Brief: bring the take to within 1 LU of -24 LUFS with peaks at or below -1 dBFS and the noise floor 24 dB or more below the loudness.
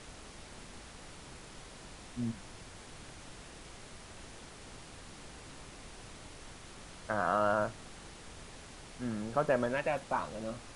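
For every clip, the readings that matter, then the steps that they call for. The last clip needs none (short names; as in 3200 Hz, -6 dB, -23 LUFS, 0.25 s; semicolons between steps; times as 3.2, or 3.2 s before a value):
noise floor -51 dBFS; noise floor target -58 dBFS; loudness -34.0 LUFS; peak -16.5 dBFS; loudness target -24.0 LUFS
-> noise print and reduce 7 dB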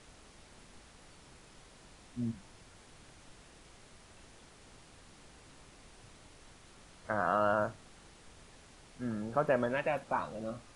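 noise floor -58 dBFS; loudness -34.0 LUFS; peak -16.0 dBFS; loudness target -24.0 LUFS
-> gain +10 dB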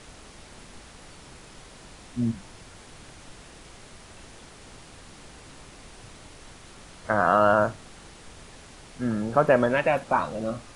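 loudness -24.0 LUFS; peak -6.0 dBFS; noise floor -48 dBFS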